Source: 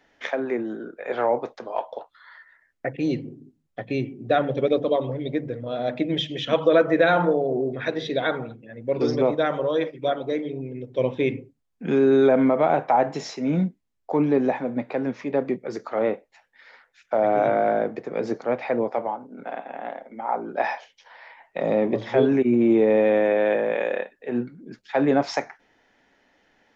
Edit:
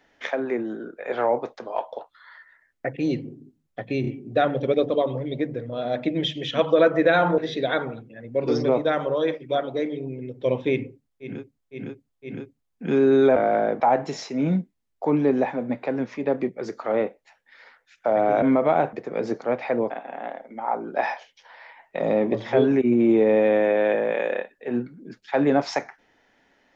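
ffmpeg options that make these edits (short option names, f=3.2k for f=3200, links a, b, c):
-filter_complex "[0:a]asplit=12[a][b][c][d][e][f][g][h][i][j][k][l];[a]atrim=end=4.042[m];[b]atrim=start=4.008:end=4.042[n];[c]atrim=start=4.008:end=7.322[o];[d]atrim=start=7.908:end=11.97[p];[e]atrim=start=11.22:end=11.97[q];[f]atrim=start=11.22:end=11.97[r];[g]atrim=start=11.22:end=12.362[s];[h]atrim=start=17.488:end=17.932[t];[i]atrim=start=12.868:end=17.492[u];[j]atrim=start=12.358:end=12.872[v];[k]atrim=start=17.928:end=18.902[w];[l]atrim=start=19.508[x];[m][n]acrossfade=d=0.004:c1=hsin:c2=hsin[y];[y][o]acrossfade=d=0.004:c1=hsin:c2=hsin[z];[z][p]acrossfade=d=0.004:c1=hsin:c2=hsin[aa];[aa][q]acrossfade=d=0.24:c1=tri:c2=tri[ab];[ab][r]acrossfade=d=0.24:c1=tri:c2=tri[ac];[ac][s]acrossfade=d=0.24:c1=tri:c2=tri[ad];[ad][t]acrossfade=d=0.004:c1=hsin:c2=hsin[ae];[ae][u]acrossfade=d=0.004:c1=hsin:c2=hsin[af];[af][v]acrossfade=d=0.004:c1=hsin:c2=hsin[ag];[ag][w]acrossfade=d=0.004:c1=hsin:c2=hsin[ah];[ah][x]acrossfade=d=0.004:c1=hsin:c2=hsin"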